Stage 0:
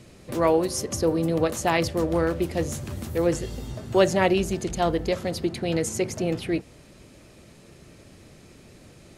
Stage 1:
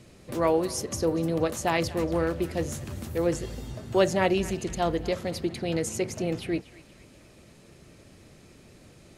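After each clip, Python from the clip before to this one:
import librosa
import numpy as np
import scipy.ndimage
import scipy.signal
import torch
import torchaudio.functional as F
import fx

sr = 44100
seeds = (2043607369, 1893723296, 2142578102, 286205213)

y = fx.echo_banded(x, sr, ms=238, feedback_pct=49, hz=2200.0, wet_db=-15.0)
y = F.gain(torch.from_numpy(y), -3.0).numpy()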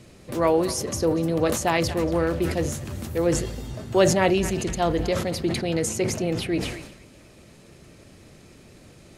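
y = fx.sustainer(x, sr, db_per_s=63.0)
y = F.gain(torch.from_numpy(y), 3.0).numpy()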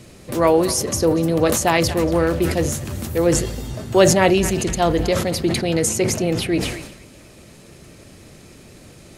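y = fx.high_shelf(x, sr, hz=7500.0, db=5.5)
y = F.gain(torch.from_numpy(y), 5.0).numpy()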